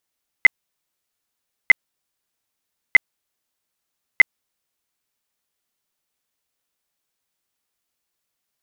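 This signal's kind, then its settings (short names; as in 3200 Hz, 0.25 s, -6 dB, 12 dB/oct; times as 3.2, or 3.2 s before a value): tone bursts 2050 Hz, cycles 32, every 1.25 s, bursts 4, -4 dBFS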